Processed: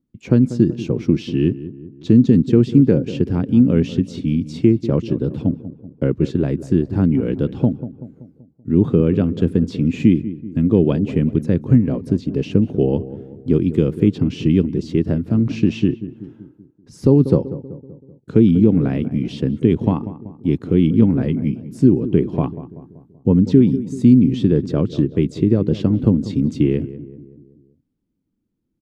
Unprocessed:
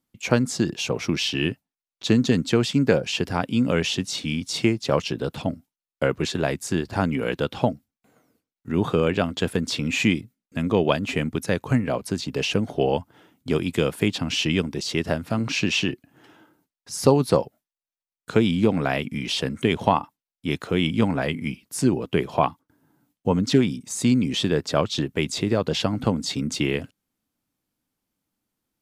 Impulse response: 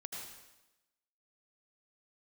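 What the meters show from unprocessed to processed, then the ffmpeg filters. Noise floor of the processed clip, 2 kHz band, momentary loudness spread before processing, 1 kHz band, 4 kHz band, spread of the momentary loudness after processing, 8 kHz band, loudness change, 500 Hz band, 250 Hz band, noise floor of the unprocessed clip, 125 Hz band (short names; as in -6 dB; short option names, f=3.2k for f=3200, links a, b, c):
-58 dBFS, -10.5 dB, 8 LU, -9.5 dB, -12.0 dB, 11 LU, under -10 dB, +6.5 dB, +3.0 dB, +9.0 dB, under -85 dBFS, +9.0 dB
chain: -filter_complex "[0:a]firequalizer=gain_entry='entry(330,0);entry(680,-18);entry(11000,-28)':delay=0.05:min_phase=1,asplit=2[a][b];[b]adelay=191,lowpass=f=1.2k:p=1,volume=-14dB,asplit=2[c][d];[d]adelay=191,lowpass=f=1.2k:p=1,volume=0.53,asplit=2[e][f];[f]adelay=191,lowpass=f=1.2k:p=1,volume=0.53,asplit=2[g][h];[h]adelay=191,lowpass=f=1.2k:p=1,volume=0.53,asplit=2[i][j];[j]adelay=191,lowpass=f=1.2k:p=1,volume=0.53[k];[c][e][g][i][k]amix=inputs=5:normalize=0[l];[a][l]amix=inputs=2:normalize=0,alimiter=level_in=10dB:limit=-1dB:release=50:level=0:latency=1,volume=-1dB"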